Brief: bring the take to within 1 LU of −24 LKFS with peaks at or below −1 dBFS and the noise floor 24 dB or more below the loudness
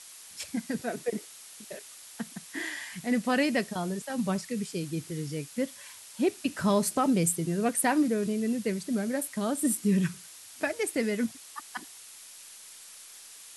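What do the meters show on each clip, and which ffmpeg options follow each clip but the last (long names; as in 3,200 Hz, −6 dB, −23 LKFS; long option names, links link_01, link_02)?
background noise floor −49 dBFS; target noise floor −54 dBFS; integrated loudness −30.0 LKFS; sample peak −14.0 dBFS; target loudness −24.0 LKFS
→ -af "afftdn=noise_reduction=6:noise_floor=-49"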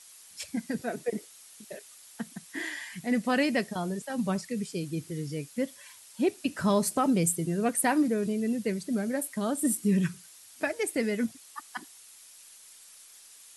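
background noise floor −53 dBFS; target noise floor −54 dBFS
→ -af "afftdn=noise_reduction=6:noise_floor=-53"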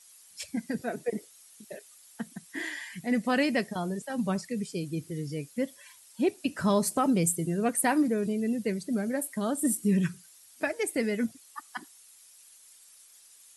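background noise floor −56 dBFS; integrated loudness −29.5 LKFS; sample peak −14.0 dBFS; target loudness −24.0 LKFS
→ -af "volume=5.5dB"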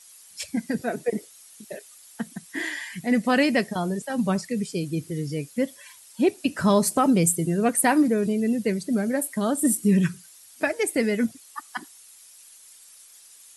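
integrated loudness −24.0 LKFS; sample peak −8.5 dBFS; background noise floor −50 dBFS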